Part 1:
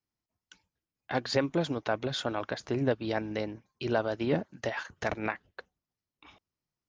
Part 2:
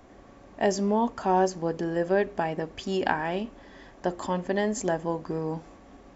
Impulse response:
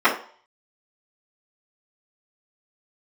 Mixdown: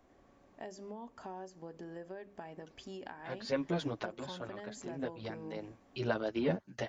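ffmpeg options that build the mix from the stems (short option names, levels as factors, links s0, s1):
-filter_complex "[0:a]asplit=2[s0][s1];[s1]adelay=8.8,afreqshift=1.4[s2];[s0][s2]amix=inputs=2:normalize=1,adelay=2150,volume=0.891[s3];[1:a]bandreject=f=50:t=h:w=6,bandreject=f=100:t=h:w=6,bandreject=f=150:t=h:w=6,bandreject=f=200:t=h:w=6,acompressor=threshold=0.0316:ratio=5,volume=0.224,asplit=2[s4][s5];[s5]apad=whole_len=399009[s6];[s3][s6]sidechaincompress=threshold=0.002:ratio=4:attack=16:release=225[s7];[s7][s4]amix=inputs=2:normalize=0"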